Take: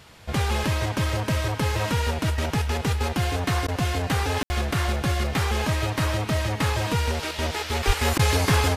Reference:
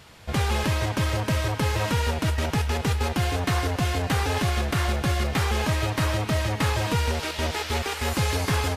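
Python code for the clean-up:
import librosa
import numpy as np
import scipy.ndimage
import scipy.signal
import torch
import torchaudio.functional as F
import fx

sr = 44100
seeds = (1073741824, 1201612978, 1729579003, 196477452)

y = fx.fix_deplosive(x, sr, at_s=(7.86,))
y = fx.fix_ambience(y, sr, seeds[0], print_start_s=0.0, print_end_s=0.5, start_s=4.43, end_s=4.5)
y = fx.fix_interpolate(y, sr, at_s=(3.67, 8.18), length_ms=11.0)
y = fx.gain(y, sr, db=fx.steps((0.0, 0.0), (7.83, -4.0)))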